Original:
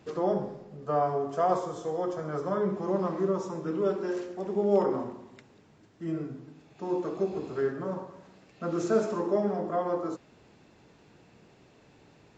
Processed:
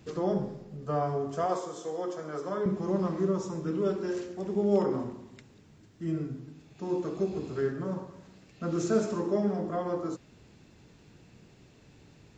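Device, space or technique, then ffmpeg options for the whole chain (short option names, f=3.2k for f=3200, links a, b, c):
smiley-face EQ: -filter_complex "[0:a]lowshelf=f=160:g=8.5,equalizer=f=770:t=o:w=1.9:g=-5,highshelf=f=5.3k:g=6,asettb=1/sr,asplit=3[a][b][c];[a]atrim=end=1.464[d];[b]atrim=start=1.46:end=2.66,asetpts=PTS-STARTPTS,afade=t=in:d=0.004:c=qsin,afade=t=out:st=1.196:d=0.004:c=qsin,highpass=300[e];[c]atrim=start=2.656[f];[d][e]acrossfade=d=0.004:c1=hsin:c2=qsin[g];[g][f]acrossfade=d=0.004:c1=qsin:c2=hsin"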